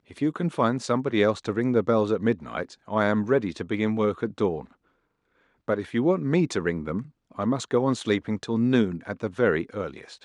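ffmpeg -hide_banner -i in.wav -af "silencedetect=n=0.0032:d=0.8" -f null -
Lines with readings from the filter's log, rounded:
silence_start: 4.73
silence_end: 5.68 | silence_duration: 0.95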